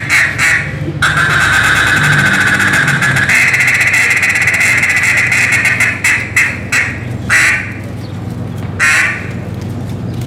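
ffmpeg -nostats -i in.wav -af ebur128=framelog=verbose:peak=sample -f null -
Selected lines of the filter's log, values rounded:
Integrated loudness:
  I:          -9.2 LUFS
  Threshold: -20.0 LUFS
Loudness range:
  LRA:         4.7 LU
  Threshold: -29.5 LUFS
  LRA low:   -12.9 LUFS
  LRA high:   -8.2 LUFS
Sample peak:
  Peak:       -1.6 dBFS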